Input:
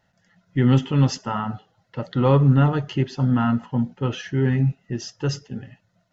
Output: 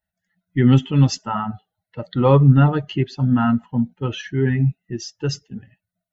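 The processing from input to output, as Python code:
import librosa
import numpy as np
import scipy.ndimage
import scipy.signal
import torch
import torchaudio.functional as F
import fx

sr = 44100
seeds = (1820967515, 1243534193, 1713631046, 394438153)

y = fx.bin_expand(x, sr, power=1.5)
y = y * librosa.db_to_amplitude(5.0)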